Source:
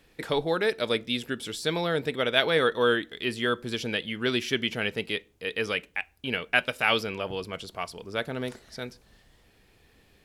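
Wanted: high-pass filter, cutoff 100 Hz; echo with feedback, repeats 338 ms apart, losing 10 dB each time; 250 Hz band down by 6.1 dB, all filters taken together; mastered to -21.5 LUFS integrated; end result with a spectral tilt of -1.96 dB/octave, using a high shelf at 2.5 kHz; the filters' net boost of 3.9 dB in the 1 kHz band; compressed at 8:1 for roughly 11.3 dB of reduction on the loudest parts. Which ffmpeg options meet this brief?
-af "highpass=100,equalizer=f=250:t=o:g=-8.5,equalizer=f=1000:t=o:g=4,highshelf=f=2500:g=8.5,acompressor=threshold=0.0562:ratio=8,aecho=1:1:338|676|1014|1352:0.316|0.101|0.0324|0.0104,volume=2.66"

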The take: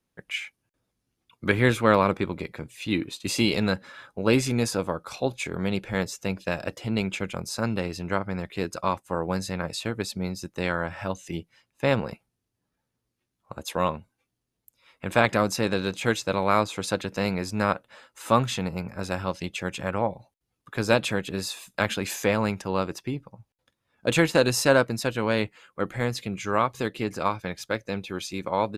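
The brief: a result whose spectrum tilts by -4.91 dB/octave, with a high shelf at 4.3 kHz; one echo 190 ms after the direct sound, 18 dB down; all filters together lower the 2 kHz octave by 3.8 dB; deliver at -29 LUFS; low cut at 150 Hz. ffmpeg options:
-af "highpass=150,equalizer=f=2000:t=o:g=-4.5,highshelf=f=4300:g=-3,aecho=1:1:190:0.126,volume=0.944"

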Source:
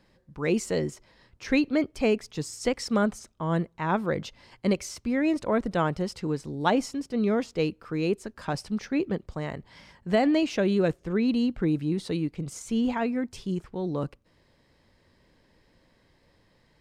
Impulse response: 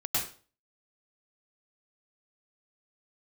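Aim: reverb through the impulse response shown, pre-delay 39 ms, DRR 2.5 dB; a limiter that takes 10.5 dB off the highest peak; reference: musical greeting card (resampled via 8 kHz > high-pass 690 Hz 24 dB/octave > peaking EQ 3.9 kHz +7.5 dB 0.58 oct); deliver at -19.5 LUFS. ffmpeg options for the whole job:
-filter_complex "[0:a]alimiter=limit=0.1:level=0:latency=1,asplit=2[s0][s1];[1:a]atrim=start_sample=2205,adelay=39[s2];[s1][s2]afir=irnorm=-1:irlink=0,volume=0.316[s3];[s0][s3]amix=inputs=2:normalize=0,aresample=8000,aresample=44100,highpass=f=690:w=0.5412,highpass=f=690:w=1.3066,equalizer=f=3900:t=o:w=0.58:g=7.5,volume=7.94"

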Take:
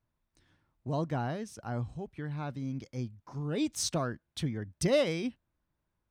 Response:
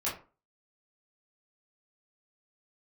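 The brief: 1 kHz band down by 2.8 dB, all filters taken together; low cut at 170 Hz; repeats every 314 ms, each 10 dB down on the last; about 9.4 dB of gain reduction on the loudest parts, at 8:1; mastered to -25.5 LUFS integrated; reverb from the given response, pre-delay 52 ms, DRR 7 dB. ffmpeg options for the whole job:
-filter_complex "[0:a]highpass=170,equalizer=f=1000:t=o:g=-4,acompressor=threshold=0.0251:ratio=8,aecho=1:1:314|628|942|1256:0.316|0.101|0.0324|0.0104,asplit=2[s0][s1];[1:a]atrim=start_sample=2205,adelay=52[s2];[s1][s2]afir=irnorm=-1:irlink=0,volume=0.224[s3];[s0][s3]amix=inputs=2:normalize=0,volume=4.47"

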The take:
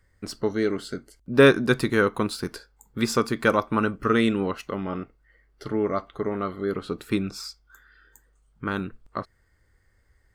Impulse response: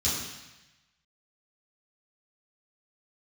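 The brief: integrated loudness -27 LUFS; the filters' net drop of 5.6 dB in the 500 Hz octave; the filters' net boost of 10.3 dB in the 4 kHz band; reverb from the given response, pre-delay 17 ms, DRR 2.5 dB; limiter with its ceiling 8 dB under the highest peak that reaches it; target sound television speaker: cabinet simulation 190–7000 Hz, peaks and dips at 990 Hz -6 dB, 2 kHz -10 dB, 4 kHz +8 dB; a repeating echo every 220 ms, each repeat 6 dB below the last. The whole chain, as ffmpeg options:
-filter_complex "[0:a]equalizer=f=500:t=o:g=-7,equalizer=f=4000:t=o:g=7.5,alimiter=limit=0.2:level=0:latency=1,aecho=1:1:220|440|660|880|1100|1320:0.501|0.251|0.125|0.0626|0.0313|0.0157,asplit=2[s0][s1];[1:a]atrim=start_sample=2205,adelay=17[s2];[s1][s2]afir=irnorm=-1:irlink=0,volume=0.266[s3];[s0][s3]amix=inputs=2:normalize=0,highpass=f=190:w=0.5412,highpass=f=190:w=1.3066,equalizer=f=990:t=q:w=4:g=-6,equalizer=f=2000:t=q:w=4:g=-10,equalizer=f=4000:t=q:w=4:g=8,lowpass=f=7000:w=0.5412,lowpass=f=7000:w=1.3066,volume=0.708"

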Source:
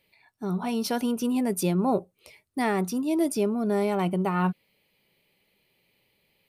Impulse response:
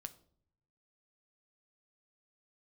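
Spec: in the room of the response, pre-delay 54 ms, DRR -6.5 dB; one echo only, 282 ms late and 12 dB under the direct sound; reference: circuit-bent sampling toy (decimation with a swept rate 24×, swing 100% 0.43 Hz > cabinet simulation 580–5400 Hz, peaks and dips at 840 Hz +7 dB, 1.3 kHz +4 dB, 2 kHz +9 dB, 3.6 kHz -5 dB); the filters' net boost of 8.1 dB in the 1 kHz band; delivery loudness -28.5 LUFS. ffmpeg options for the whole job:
-filter_complex "[0:a]equalizer=f=1000:t=o:g=5,aecho=1:1:282:0.251,asplit=2[s0][s1];[1:a]atrim=start_sample=2205,adelay=54[s2];[s1][s2]afir=irnorm=-1:irlink=0,volume=3.55[s3];[s0][s3]amix=inputs=2:normalize=0,acrusher=samples=24:mix=1:aa=0.000001:lfo=1:lforange=24:lforate=0.43,highpass=580,equalizer=f=840:t=q:w=4:g=7,equalizer=f=1300:t=q:w=4:g=4,equalizer=f=2000:t=q:w=4:g=9,equalizer=f=3600:t=q:w=4:g=-5,lowpass=f=5400:w=0.5412,lowpass=f=5400:w=1.3066,volume=0.355"

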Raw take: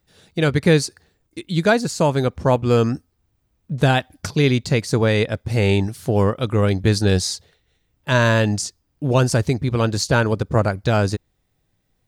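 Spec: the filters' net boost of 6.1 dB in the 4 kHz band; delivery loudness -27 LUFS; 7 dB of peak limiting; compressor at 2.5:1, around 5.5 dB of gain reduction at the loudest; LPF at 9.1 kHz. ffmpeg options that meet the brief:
-af "lowpass=9100,equalizer=f=4000:t=o:g=7.5,acompressor=threshold=0.112:ratio=2.5,volume=0.708,alimiter=limit=0.158:level=0:latency=1"

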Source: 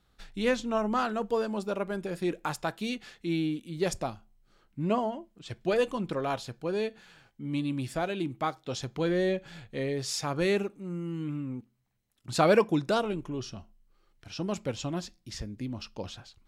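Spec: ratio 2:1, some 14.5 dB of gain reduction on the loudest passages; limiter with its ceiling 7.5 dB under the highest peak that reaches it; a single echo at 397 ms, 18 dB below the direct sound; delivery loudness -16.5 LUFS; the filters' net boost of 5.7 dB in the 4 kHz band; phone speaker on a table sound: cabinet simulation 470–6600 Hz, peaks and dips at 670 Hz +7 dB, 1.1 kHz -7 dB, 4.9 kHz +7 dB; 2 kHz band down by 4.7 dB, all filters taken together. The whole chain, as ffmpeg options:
-af "equalizer=f=2000:t=o:g=-7.5,equalizer=f=4000:t=o:g=5.5,acompressor=threshold=0.00562:ratio=2,alimiter=level_in=2.66:limit=0.0631:level=0:latency=1,volume=0.376,highpass=f=470:w=0.5412,highpass=f=470:w=1.3066,equalizer=f=670:t=q:w=4:g=7,equalizer=f=1100:t=q:w=4:g=-7,equalizer=f=4900:t=q:w=4:g=7,lowpass=f=6600:w=0.5412,lowpass=f=6600:w=1.3066,aecho=1:1:397:0.126,volume=25.1"

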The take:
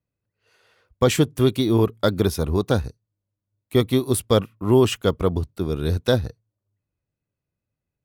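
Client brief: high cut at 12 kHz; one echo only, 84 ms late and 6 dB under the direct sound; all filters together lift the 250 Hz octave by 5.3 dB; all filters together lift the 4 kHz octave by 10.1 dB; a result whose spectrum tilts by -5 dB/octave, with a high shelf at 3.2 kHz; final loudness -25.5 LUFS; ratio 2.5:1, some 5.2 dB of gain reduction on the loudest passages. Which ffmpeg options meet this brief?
-af "lowpass=12000,equalizer=f=250:t=o:g=6.5,highshelf=f=3200:g=6,equalizer=f=4000:t=o:g=8.5,acompressor=threshold=0.158:ratio=2.5,aecho=1:1:84:0.501,volume=0.562"

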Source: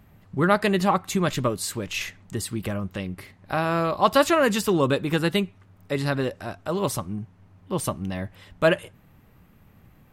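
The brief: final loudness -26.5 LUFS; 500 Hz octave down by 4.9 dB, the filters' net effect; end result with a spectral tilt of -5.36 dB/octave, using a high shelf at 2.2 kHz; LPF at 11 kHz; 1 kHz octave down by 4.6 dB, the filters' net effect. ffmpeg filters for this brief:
-af "lowpass=11000,equalizer=f=500:t=o:g=-5,equalizer=f=1000:t=o:g=-3,highshelf=f=2200:g=-6.5,volume=1.19"

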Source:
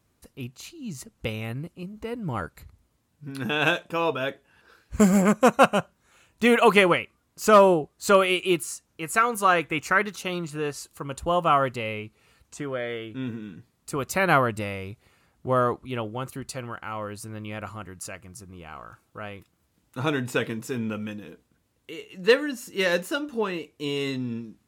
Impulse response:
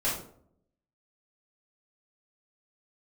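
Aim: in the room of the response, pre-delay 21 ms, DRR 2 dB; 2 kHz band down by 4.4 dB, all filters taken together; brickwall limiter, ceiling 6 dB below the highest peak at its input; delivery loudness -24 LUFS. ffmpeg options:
-filter_complex "[0:a]equalizer=f=2000:t=o:g=-6,alimiter=limit=0.282:level=0:latency=1,asplit=2[s0][s1];[1:a]atrim=start_sample=2205,adelay=21[s2];[s1][s2]afir=irnorm=-1:irlink=0,volume=0.282[s3];[s0][s3]amix=inputs=2:normalize=0,volume=1.06"

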